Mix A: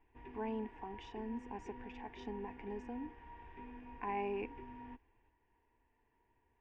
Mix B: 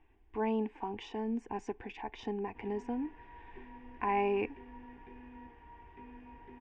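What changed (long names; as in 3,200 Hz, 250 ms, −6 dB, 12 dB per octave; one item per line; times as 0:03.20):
speech +8.0 dB
background: entry +2.40 s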